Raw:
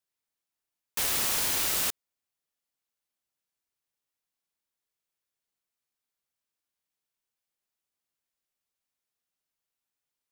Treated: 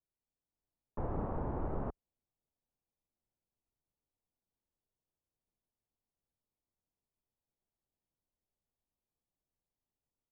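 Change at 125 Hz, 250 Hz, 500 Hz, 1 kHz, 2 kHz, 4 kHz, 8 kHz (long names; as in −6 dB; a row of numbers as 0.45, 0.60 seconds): +8.0 dB, +4.5 dB, +1.5 dB, −4.0 dB, −23.5 dB, below −40 dB, below −40 dB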